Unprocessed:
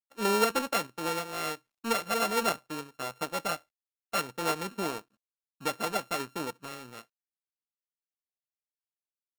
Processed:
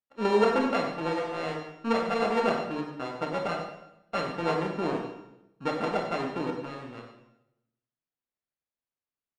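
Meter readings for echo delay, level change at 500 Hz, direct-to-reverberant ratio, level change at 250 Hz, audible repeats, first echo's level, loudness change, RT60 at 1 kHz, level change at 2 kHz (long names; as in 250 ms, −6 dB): 94 ms, +5.5 dB, 1.0 dB, +6.0 dB, 1, −10.5 dB, +2.0 dB, 0.80 s, 0.0 dB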